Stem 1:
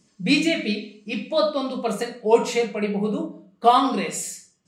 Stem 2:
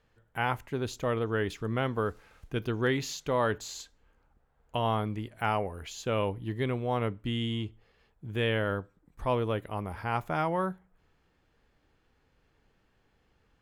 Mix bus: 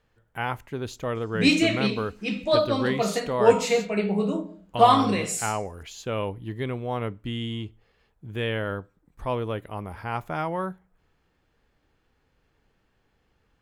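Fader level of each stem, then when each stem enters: -0.5 dB, +0.5 dB; 1.15 s, 0.00 s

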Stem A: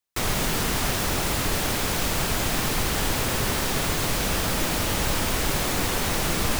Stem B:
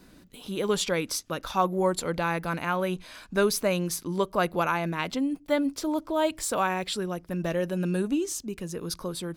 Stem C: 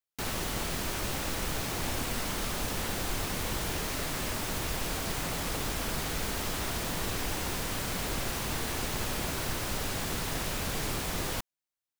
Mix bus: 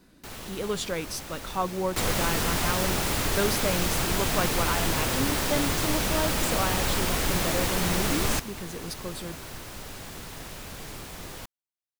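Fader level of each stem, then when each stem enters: -2.0 dB, -4.0 dB, -7.0 dB; 1.80 s, 0.00 s, 0.05 s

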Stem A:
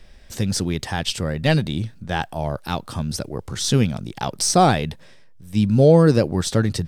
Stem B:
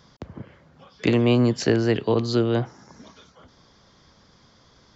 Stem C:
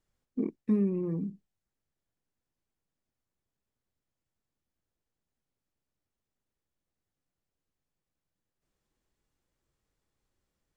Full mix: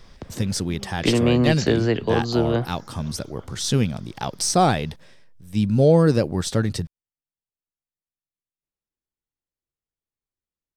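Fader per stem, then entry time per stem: -2.5 dB, 0.0 dB, -14.5 dB; 0.00 s, 0.00 s, 0.00 s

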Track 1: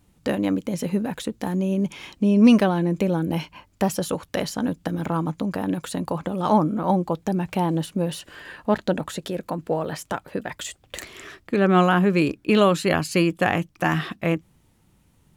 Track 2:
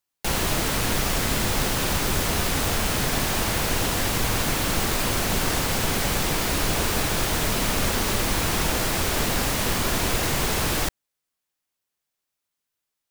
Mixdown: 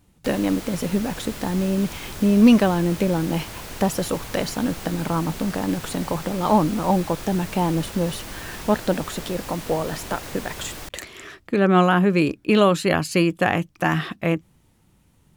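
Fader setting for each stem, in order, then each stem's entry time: +1.0 dB, -12.0 dB; 0.00 s, 0.00 s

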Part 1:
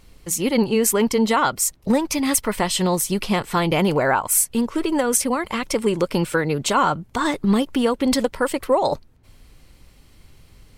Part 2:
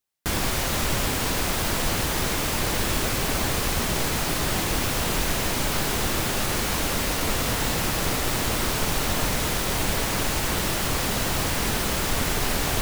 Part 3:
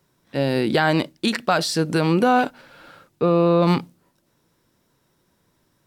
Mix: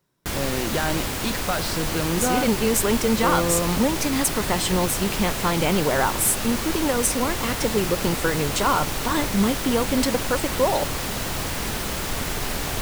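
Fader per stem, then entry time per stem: -3.0 dB, -2.5 dB, -7.0 dB; 1.90 s, 0.00 s, 0.00 s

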